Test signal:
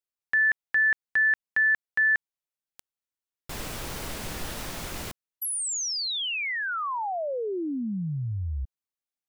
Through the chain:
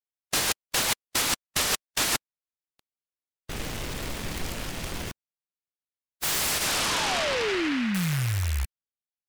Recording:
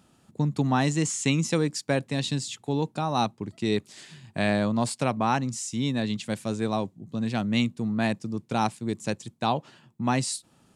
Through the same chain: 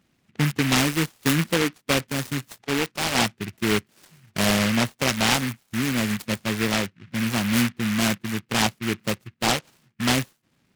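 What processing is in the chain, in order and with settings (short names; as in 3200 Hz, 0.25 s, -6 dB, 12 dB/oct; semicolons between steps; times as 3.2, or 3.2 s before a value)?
rattling part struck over -32 dBFS, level -26 dBFS; brick-wall FIR low-pass 3200 Hz; spectral noise reduction 9 dB; noise-modulated delay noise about 1900 Hz, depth 0.26 ms; gain +3.5 dB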